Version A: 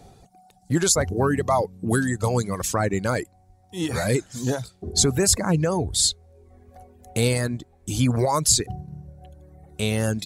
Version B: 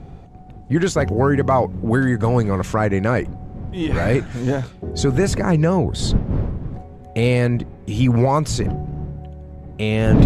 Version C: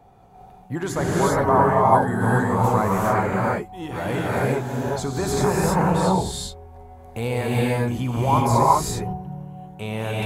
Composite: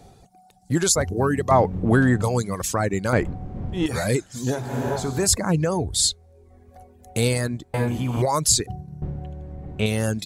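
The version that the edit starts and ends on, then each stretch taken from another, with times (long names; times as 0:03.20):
A
0:01.51–0:02.22: punch in from B
0:03.13–0:03.86: punch in from B
0:04.62–0:05.19: punch in from C, crossfade 0.24 s
0:07.74–0:08.22: punch in from C
0:09.02–0:09.86: punch in from B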